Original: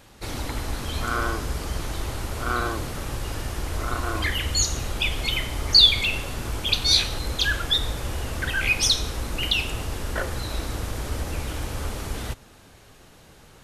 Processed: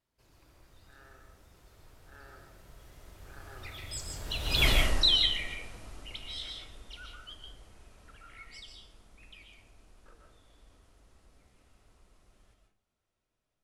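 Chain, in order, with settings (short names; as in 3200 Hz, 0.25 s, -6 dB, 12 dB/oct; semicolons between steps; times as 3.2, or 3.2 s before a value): Doppler pass-by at 4.68, 48 m/s, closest 3.5 m; digital reverb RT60 0.4 s, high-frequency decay 0.6×, pre-delay 0.1 s, DRR 2 dB; gain +3.5 dB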